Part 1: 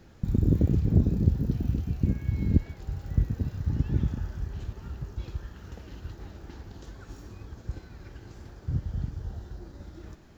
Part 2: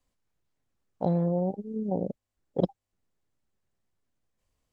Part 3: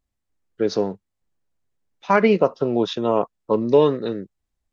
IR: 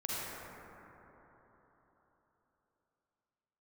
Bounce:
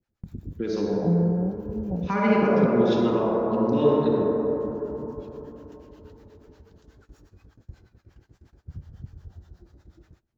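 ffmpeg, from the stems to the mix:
-filter_complex "[0:a]alimiter=limit=-17dB:level=0:latency=1:release=349,flanger=delay=7.9:depth=7.6:regen=-57:speed=0.77:shape=triangular,volume=-2dB,asplit=2[a][b];[b]volume=-21dB[c];[1:a]equalizer=f=170:t=o:w=0.77:g=12.5,volume=-7.5dB[d];[2:a]equalizer=f=230:w=0.85:g=5,volume=-0.5dB,asplit=3[e][f][g];[f]volume=-9.5dB[h];[g]apad=whole_len=457335[i];[a][i]sidechaincompress=threshold=-34dB:ratio=8:attack=16:release=628[j];[j][e]amix=inputs=2:normalize=0,acrossover=split=610[k][l];[k]aeval=exprs='val(0)*(1-1/2+1/2*cos(2*PI*8.3*n/s))':c=same[m];[l]aeval=exprs='val(0)*(1-1/2-1/2*cos(2*PI*8.3*n/s))':c=same[n];[m][n]amix=inputs=2:normalize=0,alimiter=limit=-18.5dB:level=0:latency=1:release=483,volume=0dB[o];[3:a]atrim=start_sample=2205[p];[c][h]amix=inputs=2:normalize=0[q];[q][p]afir=irnorm=-1:irlink=0[r];[d][o][r]amix=inputs=3:normalize=0,agate=range=-17dB:threshold=-54dB:ratio=16:detection=peak"

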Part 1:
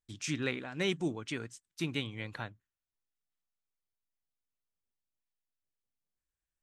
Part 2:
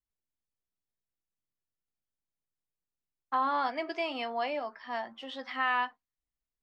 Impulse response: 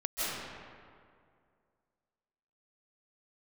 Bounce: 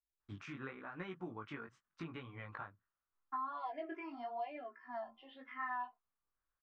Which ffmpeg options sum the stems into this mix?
-filter_complex "[0:a]equalizer=f=1.2k:w=1.4:g=15,acompressor=threshold=-38dB:ratio=12,adelay=200,volume=0dB[a];[1:a]aecho=1:1:2.9:0.73,asplit=2[b][c];[c]afreqshift=-1.3[d];[b][d]amix=inputs=2:normalize=1,volume=-6dB[e];[a][e]amix=inputs=2:normalize=0,lowpass=2k,flanger=delay=16:depth=6.2:speed=0.87,acompressor=threshold=-37dB:ratio=5"

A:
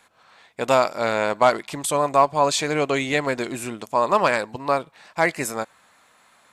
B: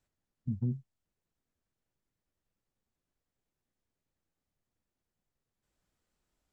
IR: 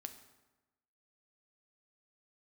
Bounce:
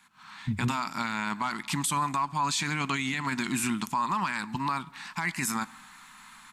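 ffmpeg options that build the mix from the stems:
-filter_complex "[0:a]firequalizer=gain_entry='entry(100,0);entry(190,10);entry(510,-26);entry(900,3)':delay=0.05:min_phase=1,acompressor=threshold=-27dB:ratio=4,highpass=63,volume=-8dB,asplit=2[a][b];[b]volume=-8dB[c];[1:a]volume=-5.5dB[d];[2:a]atrim=start_sample=2205[e];[c][e]afir=irnorm=-1:irlink=0[f];[a][d][f]amix=inputs=3:normalize=0,asubboost=boost=3.5:cutoff=55,dynaudnorm=f=130:g=3:m=10dB,alimiter=limit=-19.5dB:level=0:latency=1:release=16"

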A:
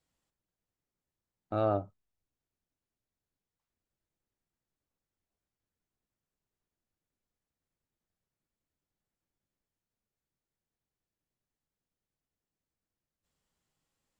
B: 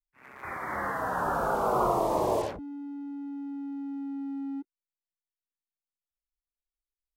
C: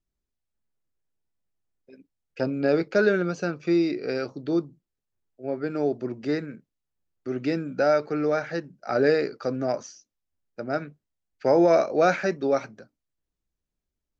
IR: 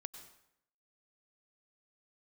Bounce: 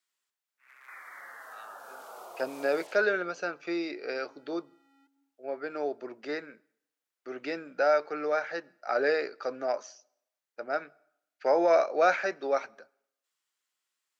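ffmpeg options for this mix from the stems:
-filter_complex "[0:a]volume=2dB[a];[1:a]adelay=450,volume=-4.5dB,asplit=2[b][c];[c]volume=-8.5dB[d];[2:a]highshelf=f=5.5k:g=-10,volume=-0.5dB,asplit=3[e][f][g];[f]volume=-16.5dB[h];[g]apad=whole_len=335848[i];[b][i]sidechaincompress=threshold=-23dB:ratio=8:attack=16:release=986[j];[a][j]amix=inputs=2:normalize=0,highpass=f=1.1k:w=0.5412,highpass=f=1.1k:w=1.3066,acompressor=threshold=-42dB:ratio=6,volume=0dB[k];[3:a]atrim=start_sample=2205[l];[d][h]amix=inputs=2:normalize=0[m];[m][l]afir=irnorm=-1:irlink=0[n];[e][k][n]amix=inputs=3:normalize=0,highpass=620"

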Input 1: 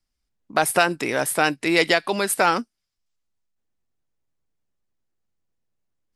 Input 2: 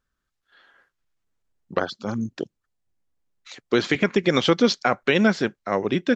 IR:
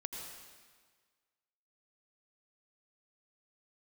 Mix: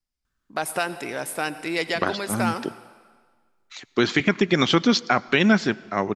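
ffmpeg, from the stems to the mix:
-filter_complex "[0:a]volume=-9.5dB,asplit=2[a][b];[b]volume=-7.5dB[c];[1:a]equalizer=f=500:w=3.2:g=-8.5,adelay=250,volume=1dB,asplit=2[d][e];[e]volume=-17.5dB[f];[2:a]atrim=start_sample=2205[g];[c][f]amix=inputs=2:normalize=0[h];[h][g]afir=irnorm=-1:irlink=0[i];[a][d][i]amix=inputs=3:normalize=0"

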